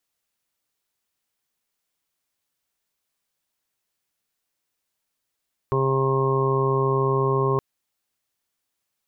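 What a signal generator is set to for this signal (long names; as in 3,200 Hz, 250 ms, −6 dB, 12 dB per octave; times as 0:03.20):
steady harmonic partials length 1.87 s, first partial 134 Hz, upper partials −12/1/−9/−15/−17.5/−9/−2.5 dB, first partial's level −23 dB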